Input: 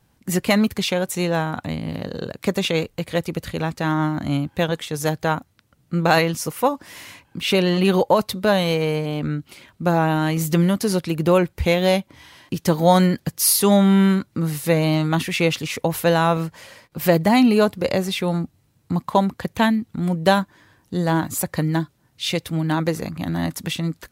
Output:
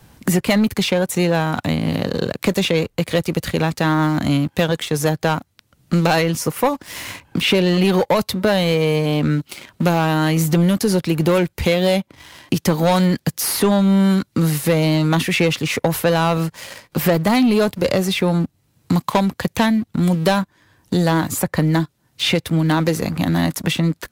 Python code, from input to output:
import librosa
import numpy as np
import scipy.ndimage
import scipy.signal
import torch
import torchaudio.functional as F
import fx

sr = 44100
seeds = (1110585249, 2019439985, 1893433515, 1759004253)

y = fx.leveller(x, sr, passes=2)
y = fx.band_squash(y, sr, depth_pct=70)
y = y * 10.0 ** (-3.5 / 20.0)